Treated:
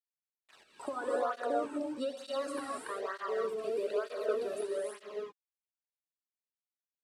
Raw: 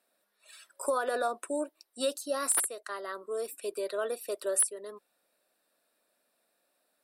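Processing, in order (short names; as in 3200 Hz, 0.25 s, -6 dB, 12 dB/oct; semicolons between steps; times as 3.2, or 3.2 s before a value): compressor 8:1, threshold -32 dBFS, peak gain reduction 10.5 dB; requantised 8-bit, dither none; tape spacing loss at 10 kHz 21 dB; non-linear reverb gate 0.35 s rising, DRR -2.5 dB; tape flanging out of phase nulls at 1.1 Hz, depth 2.2 ms; gain +3 dB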